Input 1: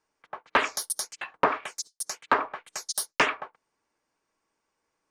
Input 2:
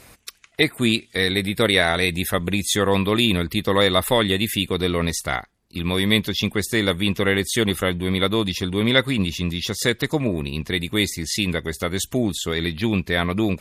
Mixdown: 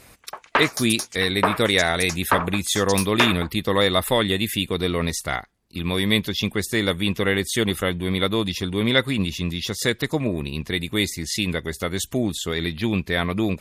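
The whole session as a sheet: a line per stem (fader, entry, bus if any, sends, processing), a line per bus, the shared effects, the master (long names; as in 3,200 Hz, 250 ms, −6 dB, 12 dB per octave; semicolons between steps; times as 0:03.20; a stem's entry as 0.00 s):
+2.5 dB, 0.00 s, no send, no processing
−1.5 dB, 0.00 s, no send, no processing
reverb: not used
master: no processing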